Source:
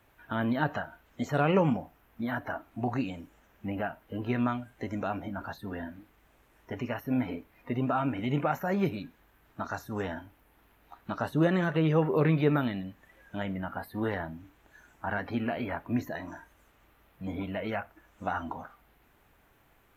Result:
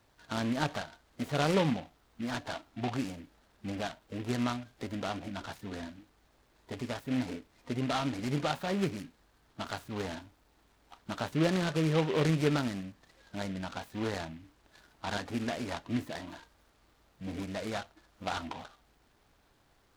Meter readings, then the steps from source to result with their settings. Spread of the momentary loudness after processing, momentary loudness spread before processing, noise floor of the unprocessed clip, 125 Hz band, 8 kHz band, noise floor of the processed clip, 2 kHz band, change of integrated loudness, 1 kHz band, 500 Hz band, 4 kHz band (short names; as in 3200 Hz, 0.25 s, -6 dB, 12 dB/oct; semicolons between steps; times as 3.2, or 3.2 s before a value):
17 LU, 17 LU, -65 dBFS, -3.0 dB, n/a, -68 dBFS, -3.0 dB, -3.0 dB, -3.5 dB, -3.0 dB, +6.5 dB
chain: noise-modulated delay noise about 2100 Hz, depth 0.081 ms; gain -3 dB